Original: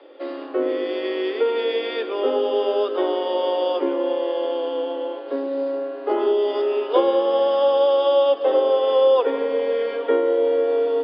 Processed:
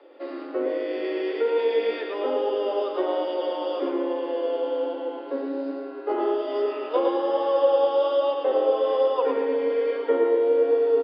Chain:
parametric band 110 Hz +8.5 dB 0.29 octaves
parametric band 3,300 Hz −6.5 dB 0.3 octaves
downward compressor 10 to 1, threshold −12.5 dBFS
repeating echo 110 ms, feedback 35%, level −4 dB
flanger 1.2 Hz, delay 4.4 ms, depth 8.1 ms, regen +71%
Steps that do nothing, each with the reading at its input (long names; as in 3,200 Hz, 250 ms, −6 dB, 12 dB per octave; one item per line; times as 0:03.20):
parametric band 110 Hz: nothing at its input below 250 Hz